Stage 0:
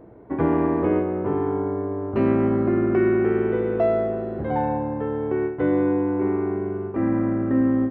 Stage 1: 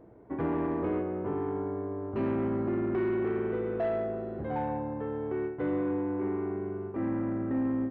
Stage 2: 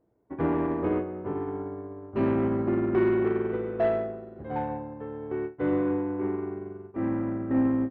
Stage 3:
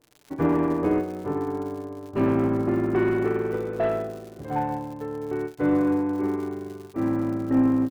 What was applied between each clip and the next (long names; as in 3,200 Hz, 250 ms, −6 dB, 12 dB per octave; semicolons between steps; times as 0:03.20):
soft clipping −15.5 dBFS, distortion −18 dB; level −7.5 dB
expander for the loud parts 2.5 to 1, over −43 dBFS; level +7.5 dB
surface crackle 130 per second −40 dBFS; comb filter 6.8 ms, depth 34%; level +3 dB